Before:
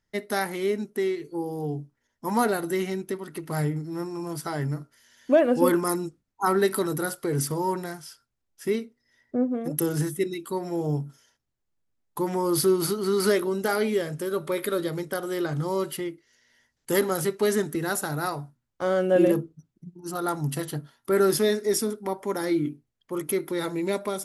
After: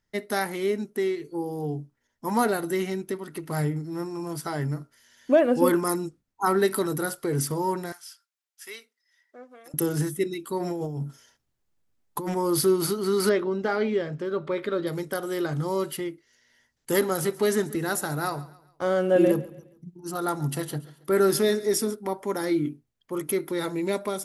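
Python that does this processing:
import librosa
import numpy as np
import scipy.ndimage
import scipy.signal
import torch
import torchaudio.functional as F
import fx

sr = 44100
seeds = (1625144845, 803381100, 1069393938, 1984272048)

y = fx.bessel_highpass(x, sr, hz=1600.0, order=2, at=(7.92, 9.74))
y = fx.over_compress(y, sr, threshold_db=-31.0, ratio=-1.0, at=(10.59, 12.35), fade=0.02)
y = fx.air_absorb(y, sr, metres=180.0, at=(13.29, 14.87))
y = fx.echo_feedback(y, sr, ms=138, feedback_pct=39, wet_db=-19.0, at=(17.2, 21.94), fade=0.02)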